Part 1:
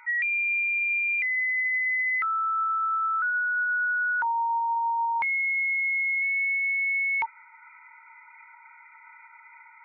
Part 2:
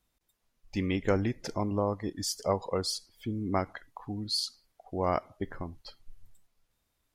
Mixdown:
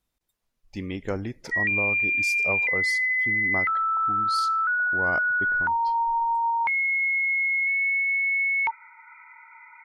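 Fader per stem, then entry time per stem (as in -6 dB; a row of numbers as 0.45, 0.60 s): +2.0, -2.5 dB; 1.45, 0.00 s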